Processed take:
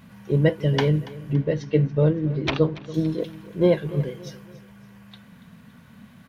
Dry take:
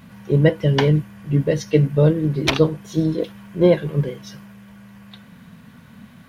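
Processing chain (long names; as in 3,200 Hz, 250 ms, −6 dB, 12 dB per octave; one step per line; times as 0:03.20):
0:01.33–0:02.94: high-frequency loss of the air 170 metres
repeating echo 283 ms, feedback 42%, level −18 dB
level −4 dB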